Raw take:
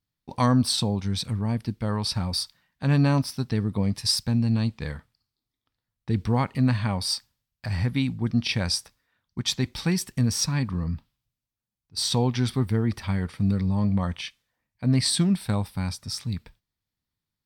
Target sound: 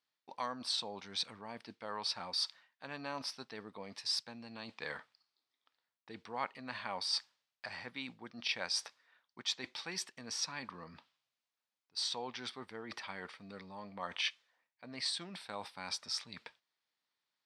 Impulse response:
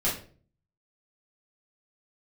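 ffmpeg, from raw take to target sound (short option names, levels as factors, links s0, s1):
-af "areverse,acompressor=threshold=0.02:ratio=6,areverse,highpass=590,lowpass=5100,volume=1.58"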